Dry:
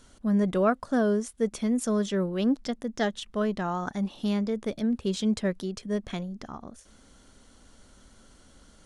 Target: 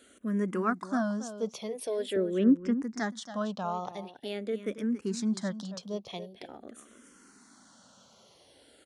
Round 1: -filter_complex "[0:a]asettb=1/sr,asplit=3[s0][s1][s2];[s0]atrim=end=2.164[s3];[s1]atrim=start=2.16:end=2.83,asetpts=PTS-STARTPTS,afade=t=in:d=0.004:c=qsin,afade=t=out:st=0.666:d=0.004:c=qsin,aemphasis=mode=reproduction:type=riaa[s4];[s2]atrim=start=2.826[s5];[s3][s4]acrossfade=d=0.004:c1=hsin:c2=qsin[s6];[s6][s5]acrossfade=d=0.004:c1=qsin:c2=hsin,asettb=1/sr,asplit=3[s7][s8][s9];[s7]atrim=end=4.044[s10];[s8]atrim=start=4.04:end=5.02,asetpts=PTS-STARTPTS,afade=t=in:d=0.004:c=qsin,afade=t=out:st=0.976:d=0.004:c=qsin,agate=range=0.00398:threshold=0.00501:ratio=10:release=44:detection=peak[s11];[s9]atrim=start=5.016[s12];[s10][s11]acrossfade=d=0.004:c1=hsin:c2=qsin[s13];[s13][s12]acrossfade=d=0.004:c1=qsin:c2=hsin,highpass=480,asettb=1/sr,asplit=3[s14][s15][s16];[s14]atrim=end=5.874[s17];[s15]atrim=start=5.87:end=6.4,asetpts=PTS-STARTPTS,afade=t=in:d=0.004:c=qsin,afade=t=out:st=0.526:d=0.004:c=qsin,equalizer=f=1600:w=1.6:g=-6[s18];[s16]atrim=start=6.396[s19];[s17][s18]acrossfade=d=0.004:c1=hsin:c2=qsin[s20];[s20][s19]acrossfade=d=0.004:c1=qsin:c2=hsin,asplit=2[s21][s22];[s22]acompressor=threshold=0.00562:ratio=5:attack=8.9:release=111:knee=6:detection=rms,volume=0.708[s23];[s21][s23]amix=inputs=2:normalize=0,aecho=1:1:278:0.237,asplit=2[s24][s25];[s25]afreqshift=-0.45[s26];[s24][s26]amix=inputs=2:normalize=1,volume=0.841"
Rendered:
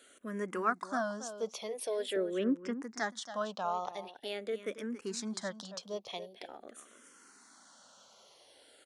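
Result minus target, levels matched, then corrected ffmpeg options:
250 Hz band -4.5 dB
-filter_complex "[0:a]asettb=1/sr,asplit=3[s0][s1][s2];[s0]atrim=end=2.164[s3];[s1]atrim=start=2.16:end=2.83,asetpts=PTS-STARTPTS,afade=t=in:d=0.004:c=qsin,afade=t=out:st=0.666:d=0.004:c=qsin,aemphasis=mode=reproduction:type=riaa[s4];[s2]atrim=start=2.826[s5];[s3][s4]acrossfade=d=0.004:c1=hsin:c2=qsin[s6];[s6][s5]acrossfade=d=0.004:c1=qsin:c2=hsin,asettb=1/sr,asplit=3[s7][s8][s9];[s7]atrim=end=4.044[s10];[s8]atrim=start=4.04:end=5.02,asetpts=PTS-STARTPTS,afade=t=in:d=0.004:c=qsin,afade=t=out:st=0.976:d=0.004:c=qsin,agate=range=0.00398:threshold=0.00501:ratio=10:release=44:detection=peak[s11];[s9]atrim=start=5.016[s12];[s10][s11]acrossfade=d=0.004:c1=hsin:c2=qsin[s13];[s13][s12]acrossfade=d=0.004:c1=qsin:c2=hsin,highpass=210,asettb=1/sr,asplit=3[s14][s15][s16];[s14]atrim=end=5.874[s17];[s15]atrim=start=5.87:end=6.4,asetpts=PTS-STARTPTS,afade=t=in:d=0.004:c=qsin,afade=t=out:st=0.526:d=0.004:c=qsin,equalizer=f=1600:w=1.6:g=-6[s18];[s16]atrim=start=6.396[s19];[s17][s18]acrossfade=d=0.004:c1=hsin:c2=qsin[s20];[s20][s19]acrossfade=d=0.004:c1=qsin:c2=hsin,asplit=2[s21][s22];[s22]acompressor=threshold=0.00562:ratio=5:attack=8.9:release=111:knee=6:detection=rms,volume=0.708[s23];[s21][s23]amix=inputs=2:normalize=0,aecho=1:1:278:0.237,asplit=2[s24][s25];[s25]afreqshift=-0.45[s26];[s24][s26]amix=inputs=2:normalize=1,volume=0.841"

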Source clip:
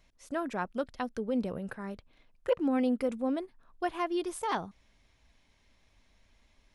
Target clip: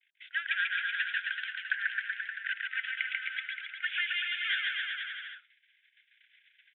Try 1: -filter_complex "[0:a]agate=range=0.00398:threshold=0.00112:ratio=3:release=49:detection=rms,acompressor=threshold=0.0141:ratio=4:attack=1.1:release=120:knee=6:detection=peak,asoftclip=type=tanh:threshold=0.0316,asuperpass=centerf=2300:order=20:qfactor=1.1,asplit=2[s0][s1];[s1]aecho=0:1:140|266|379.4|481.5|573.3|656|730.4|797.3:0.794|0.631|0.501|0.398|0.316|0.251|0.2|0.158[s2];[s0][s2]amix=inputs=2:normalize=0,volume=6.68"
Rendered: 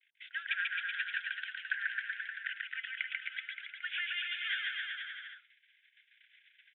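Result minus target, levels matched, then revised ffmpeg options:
compression: peak gain reduction +8.5 dB
-filter_complex "[0:a]agate=range=0.00398:threshold=0.00112:ratio=3:release=49:detection=rms,acompressor=threshold=0.0501:ratio=4:attack=1.1:release=120:knee=6:detection=peak,asoftclip=type=tanh:threshold=0.0316,asuperpass=centerf=2300:order=20:qfactor=1.1,asplit=2[s0][s1];[s1]aecho=0:1:140|266|379.4|481.5|573.3|656|730.4|797.3:0.794|0.631|0.501|0.398|0.316|0.251|0.2|0.158[s2];[s0][s2]amix=inputs=2:normalize=0,volume=6.68"

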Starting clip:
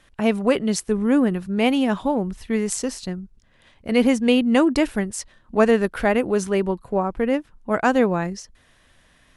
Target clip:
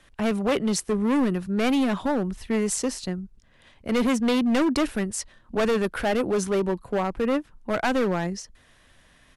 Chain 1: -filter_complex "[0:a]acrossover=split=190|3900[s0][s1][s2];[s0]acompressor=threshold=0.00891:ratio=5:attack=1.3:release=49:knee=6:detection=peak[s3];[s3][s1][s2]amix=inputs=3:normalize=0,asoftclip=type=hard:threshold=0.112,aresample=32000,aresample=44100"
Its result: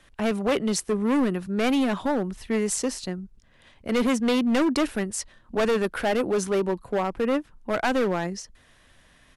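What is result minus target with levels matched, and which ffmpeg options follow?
compression: peak gain reduction +8 dB
-filter_complex "[0:a]acrossover=split=190|3900[s0][s1][s2];[s0]acompressor=threshold=0.0282:ratio=5:attack=1.3:release=49:knee=6:detection=peak[s3];[s3][s1][s2]amix=inputs=3:normalize=0,asoftclip=type=hard:threshold=0.112,aresample=32000,aresample=44100"

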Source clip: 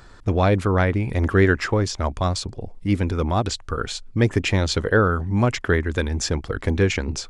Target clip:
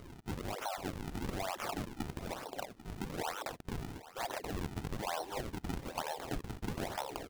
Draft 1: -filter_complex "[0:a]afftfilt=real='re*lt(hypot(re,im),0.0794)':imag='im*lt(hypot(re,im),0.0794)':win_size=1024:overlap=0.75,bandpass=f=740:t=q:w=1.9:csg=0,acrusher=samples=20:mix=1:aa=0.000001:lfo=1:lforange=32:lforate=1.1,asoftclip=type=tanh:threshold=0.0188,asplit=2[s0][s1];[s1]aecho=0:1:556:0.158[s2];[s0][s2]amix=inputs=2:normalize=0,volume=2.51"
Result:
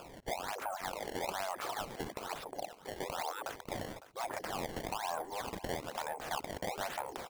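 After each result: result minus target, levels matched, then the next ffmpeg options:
echo 238 ms early; decimation with a swept rate: distortion -8 dB
-filter_complex "[0:a]afftfilt=real='re*lt(hypot(re,im),0.0794)':imag='im*lt(hypot(re,im),0.0794)':win_size=1024:overlap=0.75,bandpass=f=740:t=q:w=1.9:csg=0,acrusher=samples=20:mix=1:aa=0.000001:lfo=1:lforange=32:lforate=1.1,asoftclip=type=tanh:threshold=0.0188,asplit=2[s0][s1];[s1]aecho=0:1:794:0.158[s2];[s0][s2]amix=inputs=2:normalize=0,volume=2.51"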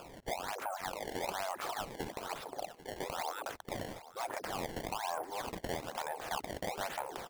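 decimation with a swept rate: distortion -8 dB
-filter_complex "[0:a]afftfilt=real='re*lt(hypot(re,im),0.0794)':imag='im*lt(hypot(re,im),0.0794)':win_size=1024:overlap=0.75,bandpass=f=740:t=q:w=1.9:csg=0,acrusher=samples=46:mix=1:aa=0.000001:lfo=1:lforange=73.6:lforate=1.1,asoftclip=type=tanh:threshold=0.0188,asplit=2[s0][s1];[s1]aecho=0:1:794:0.158[s2];[s0][s2]amix=inputs=2:normalize=0,volume=2.51"

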